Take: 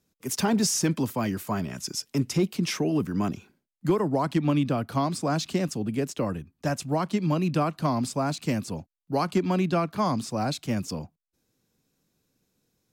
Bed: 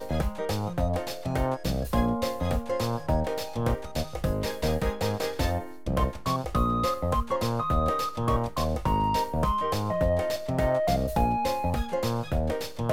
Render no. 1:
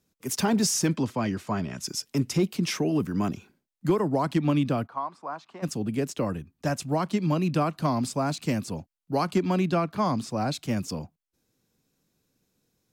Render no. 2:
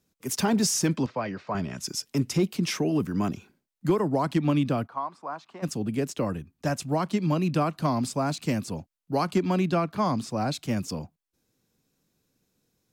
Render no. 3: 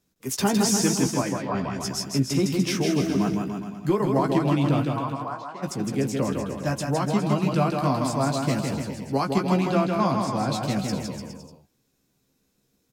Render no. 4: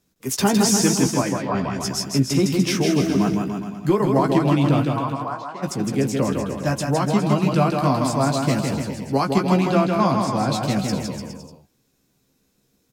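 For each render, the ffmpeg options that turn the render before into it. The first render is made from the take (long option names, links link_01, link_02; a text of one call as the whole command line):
ffmpeg -i in.wav -filter_complex "[0:a]asettb=1/sr,asplit=3[link_01][link_02][link_03];[link_01]atrim=end=0.964[link_04];[link_02]atrim=start=0.96:end=1.81,asetpts=PTS-STARTPTS,afade=type=in:duration=0.004:curve=qsin,afade=type=out:start_time=0.846:duration=0.004:curve=qsin,lowpass=6100[link_05];[link_03]atrim=start=1.806[link_06];[link_04][link_05]acrossfade=duration=0.004:curve1=hsin:curve2=qsin[link_07];[link_07][link_06]acrossfade=duration=0.004:curve1=qsin:curve2=hsin,asplit=3[link_08][link_09][link_10];[link_08]afade=type=out:start_time=4.86:duration=0.02[link_11];[link_09]bandpass=frequency=1000:width_type=q:width=2.8,afade=type=in:start_time=4.86:duration=0.02,afade=type=out:start_time=5.62:duration=0.02[link_12];[link_10]afade=type=in:start_time=5.62:duration=0.02[link_13];[link_11][link_12][link_13]amix=inputs=3:normalize=0,asettb=1/sr,asplit=3[link_14][link_15][link_16];[link_14]atrim=end=9.754[link_17];[link_15]atrim=start=9.75:end=10.54,asetpts=PTS-STARTPTS,afade=type=in:duration=0.004:curve=qsin,afade=type=out:start_time=0.786:duration=0.004:curve=qsin,highshelf=frequency=5900:gain=-5.5[link_18];[link_16]atrim=start=10.536[link_19];[link_17][link_18]acrossfade=duration=0.004:curve1=hsin:curve2=qsin[link_20];[link_20][link_19]acrossfade=duration=0.004:curve1=qsin:curve2=hsin" out.wav
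ffmpeg -i in.wav -filter_complex "[0:a]asettb=1/sr,asplit=3[link_01][link_02][link_03];[link_01]atrim=end=1.064[link_04];[link_02]atrim=start=1.06:end=1.55,asetpts=PTS-STARTPTS,afade=type=in:duration=0.004:curve=qsin,afade=type=out:start_time=0.486:duration=0.004:curve=qsin,highpass=160,equalizer=frequency=230:width_type=q:width=4:gain=-9,equalizer=frequency=340:width_type=q:width=4:gain=-7,equalizer=frequency=540:width_type=q:width=4:gain=4,equalizer=frequency=3200:width_type=q:width=4:gain=-7,lowpass=frequency=4500:width=0.5412,lowpass=frequency=4500:width=1.3066[link_05];[link_03]atrim=start=1.546[link_06];[link_04][link_05]acrossfade=duration=0.004:curve1=hsin:curve2=qsin[link_07];[link_07][link_06]acrossfade=duration=0.004:curve1=qsin:curve2=hsin" out.wav
ffmpeg -i in.wav -filter_complex "[0:a]asplit=2[link_01][link_02];[link_02]adelay=15,volume=-6dB[link_03];[link_01][link_03]amix=inputs=2:normalize=0,aecho=1:1:160|296|411.6|509.9|593.4:0.631|0.398|0.251|0.158|0.1" out.wav
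ffmpeg -i in.wav -af "volume=4dB" out.wav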